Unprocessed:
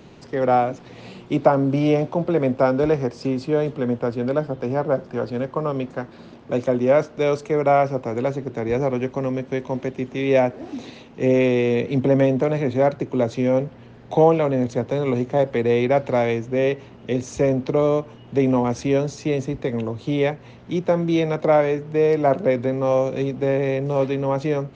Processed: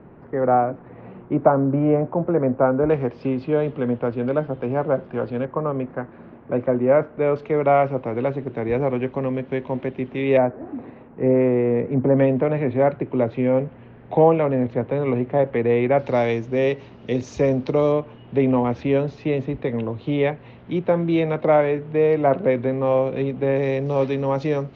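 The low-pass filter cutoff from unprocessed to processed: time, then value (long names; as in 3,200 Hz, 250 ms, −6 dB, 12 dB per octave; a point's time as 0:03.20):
low-pass filter 24 dB per octave
1,700 Hz
from 0:02.90 3,200 Hz
from 0:05.45 2,100 Hz
from 0:07.36 3,300 Hz
from 0:10.37 1,700 Hz
from 0:12.17 2,700 Hz
from 0:15.99 5,500 Hz
from 0:17.92 3,400 Hz
from 0:23.56 5,500 Hz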